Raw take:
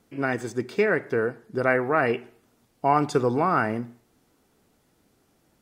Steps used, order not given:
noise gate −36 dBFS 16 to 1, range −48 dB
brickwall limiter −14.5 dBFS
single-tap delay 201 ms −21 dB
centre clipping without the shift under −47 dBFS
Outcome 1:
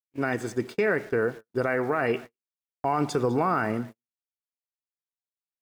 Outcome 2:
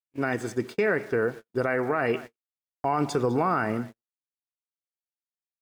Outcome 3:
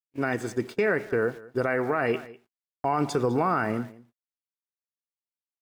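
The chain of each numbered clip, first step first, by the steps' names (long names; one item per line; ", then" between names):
brickwall limiter, then centre clipping without the shift, then single-tap delay, then noise gate
single-tap delay, then centre clipping without the shift, then noise gate, then brickwall limiter
centre clipping without the shift, then noise gate, then single-tap delay, then brickwall limiter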